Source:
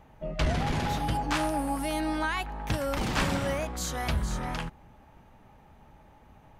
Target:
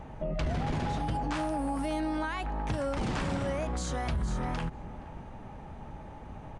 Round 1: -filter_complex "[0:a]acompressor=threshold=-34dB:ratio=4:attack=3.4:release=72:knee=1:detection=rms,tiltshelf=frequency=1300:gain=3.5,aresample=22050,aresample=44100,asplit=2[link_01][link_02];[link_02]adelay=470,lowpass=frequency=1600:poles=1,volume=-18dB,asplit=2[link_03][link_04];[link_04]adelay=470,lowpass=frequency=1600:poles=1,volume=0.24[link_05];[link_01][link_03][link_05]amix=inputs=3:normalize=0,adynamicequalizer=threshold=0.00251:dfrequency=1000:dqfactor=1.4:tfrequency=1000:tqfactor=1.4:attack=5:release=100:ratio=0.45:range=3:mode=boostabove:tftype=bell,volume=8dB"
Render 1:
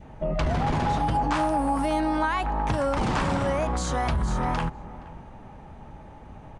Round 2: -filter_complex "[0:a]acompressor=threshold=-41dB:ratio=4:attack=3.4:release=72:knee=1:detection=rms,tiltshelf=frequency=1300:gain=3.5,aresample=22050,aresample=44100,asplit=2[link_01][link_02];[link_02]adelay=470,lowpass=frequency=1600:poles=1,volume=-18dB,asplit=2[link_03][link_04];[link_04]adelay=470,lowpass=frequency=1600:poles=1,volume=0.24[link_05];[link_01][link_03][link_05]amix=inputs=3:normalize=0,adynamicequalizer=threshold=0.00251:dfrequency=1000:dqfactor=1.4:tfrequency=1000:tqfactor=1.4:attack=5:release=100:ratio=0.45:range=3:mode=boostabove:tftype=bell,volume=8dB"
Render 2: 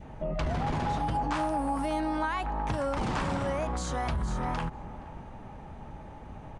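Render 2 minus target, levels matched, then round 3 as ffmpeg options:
1,000 Hz band +3.0 dB
-filter_complex "[0:a]acompressor=threshold=-41dB:ratio=4:attack=3.4:release=72:knee=1:detection=rms,tiltshelf=frequency=1300:gain=3.5,aresample=22050,aresample=44100,asplit=2[link_01][link_02];[link_02]adelay=470,lowpass=frequency=1600:poles=1,volume=-18dB,asplit=2[link_03][link_04];[link_04]adelay=470,lowpass=frequency=1600:poles=1,volume=0.24[link_05];[link_01][link_03][link_05]amix=inputs=3:normalize=0,volume=8dB"

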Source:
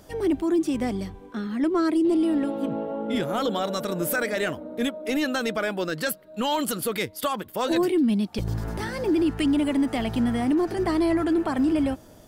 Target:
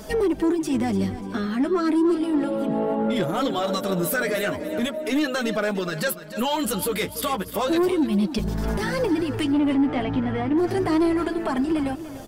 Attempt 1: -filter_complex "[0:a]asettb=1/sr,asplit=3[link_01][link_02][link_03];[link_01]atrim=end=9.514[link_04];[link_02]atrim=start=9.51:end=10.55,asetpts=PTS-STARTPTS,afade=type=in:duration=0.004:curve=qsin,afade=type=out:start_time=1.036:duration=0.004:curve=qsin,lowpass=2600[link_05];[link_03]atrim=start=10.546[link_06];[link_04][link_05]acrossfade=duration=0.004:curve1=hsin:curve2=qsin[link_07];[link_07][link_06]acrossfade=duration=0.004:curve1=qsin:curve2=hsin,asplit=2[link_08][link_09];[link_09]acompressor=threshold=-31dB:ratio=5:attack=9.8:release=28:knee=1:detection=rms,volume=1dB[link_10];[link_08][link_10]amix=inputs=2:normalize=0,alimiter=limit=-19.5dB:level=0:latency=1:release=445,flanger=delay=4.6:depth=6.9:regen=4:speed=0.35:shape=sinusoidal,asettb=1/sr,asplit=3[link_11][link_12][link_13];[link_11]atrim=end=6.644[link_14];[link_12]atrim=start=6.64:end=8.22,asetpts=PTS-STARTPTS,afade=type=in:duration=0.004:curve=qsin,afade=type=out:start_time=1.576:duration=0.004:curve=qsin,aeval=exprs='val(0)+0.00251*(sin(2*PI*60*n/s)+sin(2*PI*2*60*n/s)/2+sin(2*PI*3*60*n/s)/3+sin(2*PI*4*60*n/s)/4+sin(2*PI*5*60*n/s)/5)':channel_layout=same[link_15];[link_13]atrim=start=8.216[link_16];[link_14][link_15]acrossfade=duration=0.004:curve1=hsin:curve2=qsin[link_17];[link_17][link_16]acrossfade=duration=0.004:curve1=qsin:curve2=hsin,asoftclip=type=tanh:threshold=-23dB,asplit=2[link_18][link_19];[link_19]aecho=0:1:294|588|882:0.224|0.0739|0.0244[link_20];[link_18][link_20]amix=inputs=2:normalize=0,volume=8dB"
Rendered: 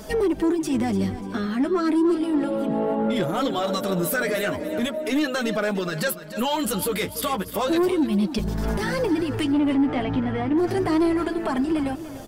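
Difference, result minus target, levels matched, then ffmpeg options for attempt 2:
downward compressor: peak gain reduction +5.5 dB
-filter_complex "[0:a]asettb=1/sr,asplit=3[link_01][link_02][link_03];[link_01]atrim=end=9.514[link_04];[link_02]atrim=start=9.51:end=10.55,asetpts=PTS-STARTPTS,afade=type=in:duration=0.004:curve=qsin,afade=type=out:start_time=1.036:duration=0.004:curve=qsin,lowpass=2600[link_05];[link_03]atrim=start=10.546[link_06];[link_04][link_05]acrossfade=duration=0.004:curve1=hsin:curve2=qsin[link_07];[link_07][link_06]acrossfade=duration=0.004:curve1=qsin:curve2=hsin,asplit=2[link_08][link_09];[link_09]acompressor=threshold=-24dB:ratio=5:attack=9.8:release=28:knee=1:detection=rms,volume=1dB[link_10];[link_08][link_10]amix=inputs=2:normalize=0,alimiter=limit=-19.5dB:level=0:latency=1:release=445,flanger=delay=4.6:depth=6.9:regen=4:speed=0.35:shape=sinusoidal,asettb=1/sr,asplit=3[link_11][link_12][link_13];[link_11]atrim=end=6.644[link_14];[link_12]atrim=start=6.64:end=8.22,asetpts=PTS-STARTPTS,afade=type=in:duration=0.004:curve=qsin,afade=type=out:start_time=1.576:duration=0.004:curve=qsin,aeval=exprs='val(0)+0.00251*(sin(2*PI*60*n/s)+sin(2*PI*2*60*n/s)/2+sin(2*PI*3*60*n/s)/3+sin(2*PI*4*60*n/s)/4+sin(2*PI*5*60*n/s)/5)':channel_layout=same[link_15];[link_13]atrim=start=8.216[link_16];[link_14][link_15]acrossfade=duration=0.004:curve1=hsin:curve2=qsin[link_17];[link_17][link_16]acrossfade=duration=0.004:curve1=qsin:curve2=hsin,asoftclip=type=tanh:threshold=-23dB,asplit=2[link_18][link_19];[link_19]aecho=0:1:294|588|882:0.224|0.0739|0.0244[link_20];[link_18][link_20]amix=inputs=2:normalize=0,volume=8dB"

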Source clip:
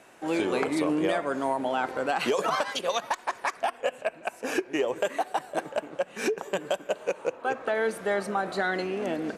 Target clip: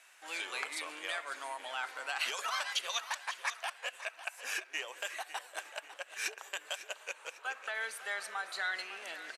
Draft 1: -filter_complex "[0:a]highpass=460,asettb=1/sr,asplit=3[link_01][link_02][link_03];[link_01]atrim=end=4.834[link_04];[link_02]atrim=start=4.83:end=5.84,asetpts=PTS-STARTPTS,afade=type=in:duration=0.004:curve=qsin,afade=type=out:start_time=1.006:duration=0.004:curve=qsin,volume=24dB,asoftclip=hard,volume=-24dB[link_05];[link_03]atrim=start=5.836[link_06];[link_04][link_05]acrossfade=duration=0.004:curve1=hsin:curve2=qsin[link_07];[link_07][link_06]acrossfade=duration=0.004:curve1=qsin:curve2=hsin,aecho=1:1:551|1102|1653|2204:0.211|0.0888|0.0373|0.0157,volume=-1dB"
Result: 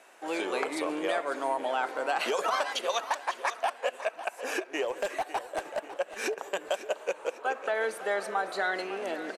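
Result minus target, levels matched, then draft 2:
500 Hz band +11.0 dB
-filter_complex "[0:a]highpass=1700,asettb=1/sr,asplit=3[link_01][link_02][link_03];[link_01]atrim=end=4.834[link_04];[link_02]atrim=start=4.83:end=5.84,asetpts=PTS-STARTPTS,afade=type=in:duration=0.004:curve=qsin,afade=type=out:start_time=1.006:duration=0.004:curve=qsin,volume=24dB,asoftclip=hard,volume=-24dB[link_05];[link_03]atrim=start=5.836[link_06];[link_04][link_05]acrossfade=duration=0.004:curve1=hsin:curve2=qsin[link_07];[link_07][link_06]acrossfade=duration=0.004:curve1=qsin:curve2=hsin,aecho=1:1:551|1102|1653|2204:0.211|0.0888|0.0373|0.0157,volume=-1dB"

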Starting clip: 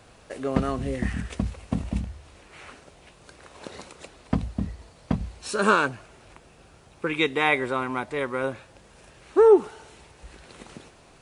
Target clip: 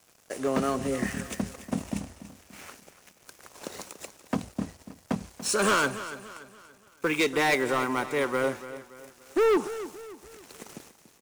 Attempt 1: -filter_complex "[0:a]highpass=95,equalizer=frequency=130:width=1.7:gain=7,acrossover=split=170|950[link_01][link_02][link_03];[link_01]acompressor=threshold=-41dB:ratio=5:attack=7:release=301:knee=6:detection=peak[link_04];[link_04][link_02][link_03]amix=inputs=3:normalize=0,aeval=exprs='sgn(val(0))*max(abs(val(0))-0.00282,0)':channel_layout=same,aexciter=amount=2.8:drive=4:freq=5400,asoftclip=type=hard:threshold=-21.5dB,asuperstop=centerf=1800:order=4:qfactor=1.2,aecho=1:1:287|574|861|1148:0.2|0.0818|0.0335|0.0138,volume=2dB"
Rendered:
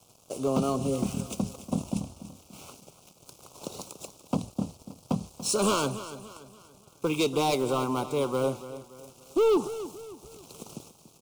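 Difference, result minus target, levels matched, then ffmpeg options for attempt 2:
2,000 Hz band −11.5 dB; 125 Hz band +5.0 dB
-filter_complex "[0:a]highpass=95,equalizer=frequency=130:width=1.7:gain=-2,acrossover=split=170|950[link_01][link_02][link_03];[link_01]acompressor=threshold=-41dB:ratio=5:attack=7:release=301:knee=6:detection=peak[link_04];[link_04][link_02][link_03]amix=inputs=3:normalize=0,aeval=exprs='sgn(val(0))*max(abs(val(0))-0.00282,0)':channel_layout=same,aexciter=amount=2.8:drive=4:freq=5400,asoftclip=type=hard:threshold=-21.5dB,aecho=1:1:287|574|861|1148:0.2|0.0818|0.0335|0.0138,volume=2dB"

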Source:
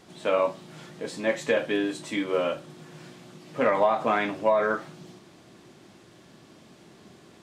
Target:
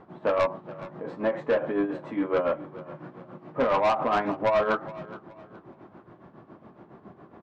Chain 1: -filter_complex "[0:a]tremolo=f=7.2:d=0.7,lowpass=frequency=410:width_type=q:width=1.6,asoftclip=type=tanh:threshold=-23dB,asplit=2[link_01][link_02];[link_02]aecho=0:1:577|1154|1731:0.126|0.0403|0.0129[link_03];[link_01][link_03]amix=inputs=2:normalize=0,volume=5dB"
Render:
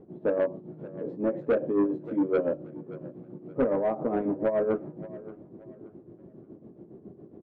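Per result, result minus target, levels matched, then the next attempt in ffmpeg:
1,000 Hz band −9.0 dB; echo 158 ms late
-filter_complex "[0:a]tremolo=f=7.2:d=0.7,lowpass=frequency=1100:width_type=q:width=1.6,asoftclip=type=tanh:threshold=-23dB,asplit=2[link_01][link_02];[link_02]aecho=0:1:577|1154|1731:0.126|0.0403|0.0129[link_03];[link_01][link_03]amix=inputs=2:normalize=0,volume=5dB"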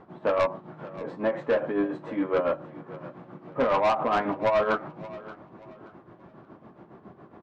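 echo 158 ms late
-filter_complex "[0:a]tremolo=f=7.2:d=0.7,lowpass=frequency=1100:width_type=q:width=1.6,asoftclip=type=tanh:threshold=-23dB,asplit=2[link_01][link_02];[link_02]aecho=0:1:419|838|1257:0.126|0.0403|0.0129[link_03];[link_01][link_03]amix=inputs=2:normalize=0,volume=5dB"

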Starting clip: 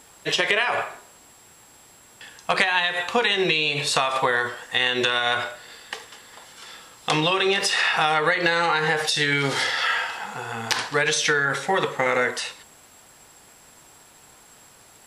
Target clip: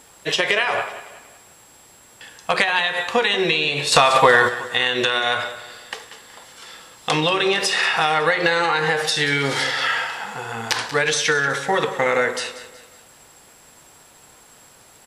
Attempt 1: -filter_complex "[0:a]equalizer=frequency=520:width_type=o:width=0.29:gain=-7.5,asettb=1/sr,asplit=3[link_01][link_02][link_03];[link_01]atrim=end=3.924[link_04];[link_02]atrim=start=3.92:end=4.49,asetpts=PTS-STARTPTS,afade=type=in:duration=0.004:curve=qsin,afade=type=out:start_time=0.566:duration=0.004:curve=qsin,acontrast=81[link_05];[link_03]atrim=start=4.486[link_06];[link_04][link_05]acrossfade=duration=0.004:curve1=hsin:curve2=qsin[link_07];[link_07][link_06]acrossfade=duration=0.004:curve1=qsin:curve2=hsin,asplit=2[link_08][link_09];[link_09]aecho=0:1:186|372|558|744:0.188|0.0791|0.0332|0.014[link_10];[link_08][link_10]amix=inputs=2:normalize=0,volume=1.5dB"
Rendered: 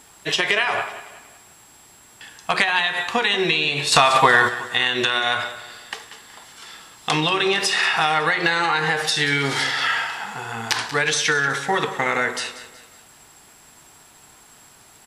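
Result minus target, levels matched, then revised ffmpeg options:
500 Hz band −3.5 dB
-filter_complex "[0:a]equalizer=frequency=520:width_type=o:width=0.29:gain=2.5,asettb=1/sr,asplit=3[link_01][link_02][link_03];[link_01]atrim=end=3.924[link_04];[link_02]atrim=start=3.92:end=4.49,asetpts=PTS-STARTPTS,afade=type=in:duration=0.004:curve=qsin,afade=type=out:start_time=0.566:duration=0.004:curve=qsin,acontrast=81[link_05];[link_03]atrim=start=4.486[link_06];[link_04][link_05]acrossfade=duration=0.004:curve1=hsin:curve2=qsin[link_07];[link_07][link_06]acrossfade=duration=0.004:curve1=qsin:curve2=hsin,asplit=2[link_08][link_09];[link_09]aecho=0:1:186|372|558|744:0.188|0.0791|0.0332|0.014[link_10];[link_08][link_10]amix=inputs=2:normalize=0,volume=1.5dB"

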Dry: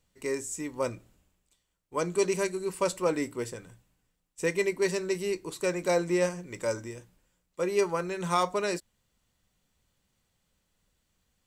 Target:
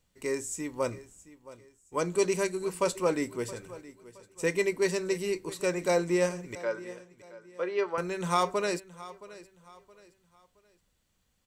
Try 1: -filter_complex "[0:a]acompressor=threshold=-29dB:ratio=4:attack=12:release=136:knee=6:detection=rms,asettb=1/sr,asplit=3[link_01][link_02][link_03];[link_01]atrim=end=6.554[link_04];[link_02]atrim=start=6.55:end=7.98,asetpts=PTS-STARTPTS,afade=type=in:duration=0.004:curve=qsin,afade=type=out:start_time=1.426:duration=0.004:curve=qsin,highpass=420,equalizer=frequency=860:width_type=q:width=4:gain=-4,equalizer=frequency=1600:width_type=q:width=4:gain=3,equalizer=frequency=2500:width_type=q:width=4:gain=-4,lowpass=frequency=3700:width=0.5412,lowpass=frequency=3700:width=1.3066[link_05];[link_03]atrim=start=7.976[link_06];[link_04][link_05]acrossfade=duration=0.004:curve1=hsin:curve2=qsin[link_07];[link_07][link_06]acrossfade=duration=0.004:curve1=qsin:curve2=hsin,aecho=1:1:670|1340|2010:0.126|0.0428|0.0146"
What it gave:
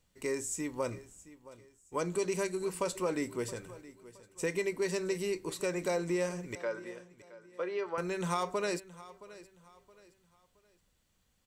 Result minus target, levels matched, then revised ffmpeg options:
downward compressor: peak gain reduction +8 dB
-filter_complex "[0:a]asettb=1/sr,asplit=3[link_01][link_02][link_03];[link_01]atrim=end=6.554[link_04];[link_02]atrim=start=6.55:end=7.98,asetpts=PTS-STARTPTS,afade=type=in:duration=0.004:curve=qsin,afade=type=out:start_time=1.426:duration=0.004:curve=qsin,highpass=420,equalizer=frequency=860:width_type=q:width=4:gain=-4,equalizer=frequency=1600:width_type=q:width=4:gain=3,equalizer=frequency=2500:width_type=q:width=4:gain=-4,lowpass=frequency=3700:width=0.5412,lowpass=frequency=3700:width=1.3066[link_05];[link_03]atrim=start=7.976[link_06];[link_04][link_05]acrossfade=duration=0.004:curve1=hsin:curve2=qsin[link_07];[link_07][link_06]acrossfade=duration=0.004:curve1=qsin:curve2=hsin,aecho=1:1:670|1340|2010:0.126|0.0428|0.0146"

